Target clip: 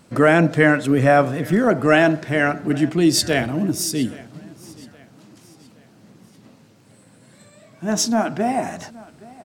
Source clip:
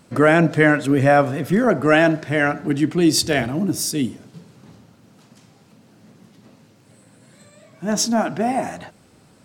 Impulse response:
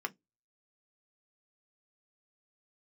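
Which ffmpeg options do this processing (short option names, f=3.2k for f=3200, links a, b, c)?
-af "aecho=1:1:820|1640|2460:0.0794|0.0326|0.0134"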